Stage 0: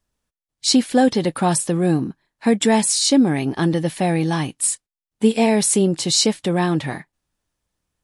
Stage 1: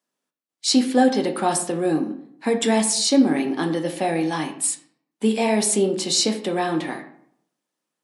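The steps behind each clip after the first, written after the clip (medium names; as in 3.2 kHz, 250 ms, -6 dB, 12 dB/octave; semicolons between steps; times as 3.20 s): high-pass 220 Hz 24 dB/octave; reverberation RT60 0.65 s, pre-delay 3 ms, DRR 4 dB; trim -3 dB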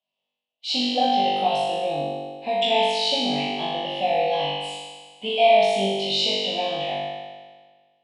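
FFT filter 140 Hz 0 dB, 360 Hz -15 dB, 680 Hz +10 dB, 1.5 kHz -21 dB, 2.9 kHz +13 dB, 7 kHz -19 dB, 11 kHz -27 dB; on a send: flutter echo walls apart 3.5 m, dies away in 1.5 s; on the sum: trim -6.5 dB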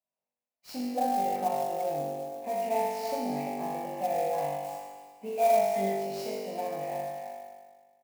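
Butterworth band-stop 3.4 kHz, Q 0.93; speakerphone echo 340 ms, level -8 dB; sampling jitter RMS 0.024 ms; trim -7 dB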